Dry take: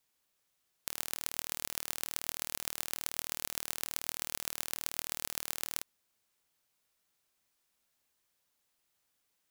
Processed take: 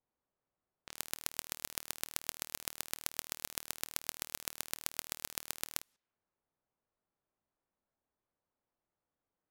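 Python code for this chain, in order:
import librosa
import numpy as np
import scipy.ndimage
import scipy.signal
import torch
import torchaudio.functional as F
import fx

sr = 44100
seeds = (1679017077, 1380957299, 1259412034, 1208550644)

y = fx.env_lowpass(x, sr, base_hz=800.0, full_db=-51.5)
y = fx.level_steps(y, sr, step_db=14)
y = F.gain(torch.from_numpy(y), 5.0).numpy()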